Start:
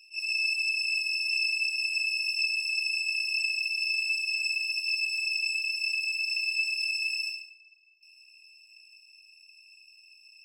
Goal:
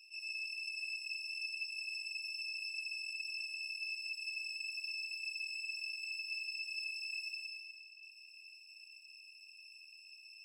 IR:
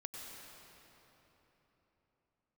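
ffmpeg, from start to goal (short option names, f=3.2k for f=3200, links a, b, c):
-filter_complex "[0:a]acompressor=threshold=-42dB:ratio=3[a];[1:a]atrim=start_sample=2205[b];[a][b]afir=irnorm=-1:irlink=0,afftfilt=real='re*gte(b*sr/1024,370*pow(1900/370,0.5+0.5*sin(2*PI*1.1*pts/sr)))':imag='im*gte(b*sr/1024,370*pow(1900/370,0.5+0.5*sin(2*PI*1.1*pts/sr)))':win_size=1024:overlap=0.75,volume=1.5dB"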